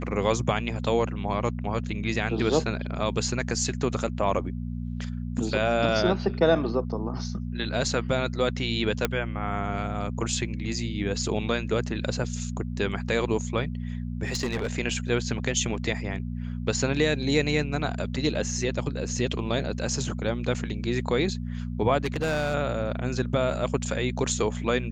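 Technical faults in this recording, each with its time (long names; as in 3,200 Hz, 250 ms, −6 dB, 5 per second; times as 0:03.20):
mains hum 60 Hz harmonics 4 −32 dBFS
0:09.05: click −8 dBFS
0:14.25–0:14.73: clipping −23.5 dBFS
0:22.05–0:22.55: clipping −22.5 dBFS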